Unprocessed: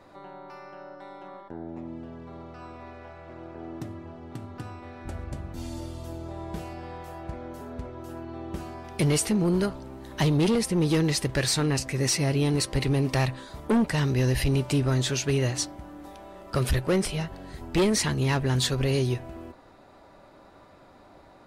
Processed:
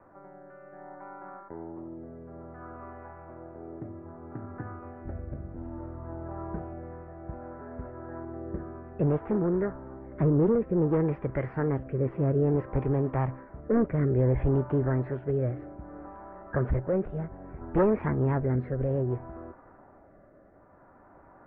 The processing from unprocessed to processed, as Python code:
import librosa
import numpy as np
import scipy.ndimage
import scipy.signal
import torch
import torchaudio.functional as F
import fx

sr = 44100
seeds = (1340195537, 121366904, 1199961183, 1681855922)

y = fx.rotary(x, sr, hz=0.6)
y = fx.formant_shift(y, sr, semitones=3)
y = scipy.signal.sosfilt(scipy.signal.butter(6, 1700.0, 'lowpass', fs=sr, output='sos'), y)